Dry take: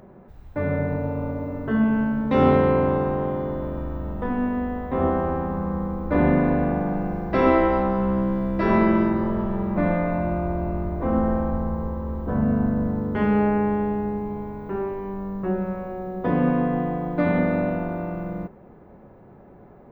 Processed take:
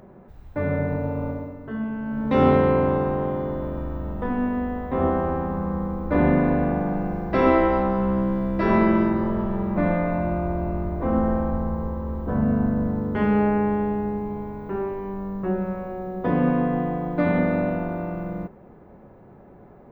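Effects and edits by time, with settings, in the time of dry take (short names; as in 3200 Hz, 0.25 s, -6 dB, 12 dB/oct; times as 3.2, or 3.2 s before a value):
1.29–2.29 dip -8.5 dB, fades 0.27 s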